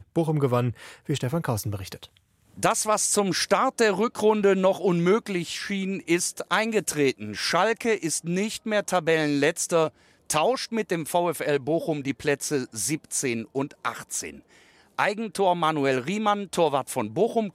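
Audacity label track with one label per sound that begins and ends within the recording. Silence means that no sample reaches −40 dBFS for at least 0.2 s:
2.570000	9.890000	sound
10.300000	14.400000	sound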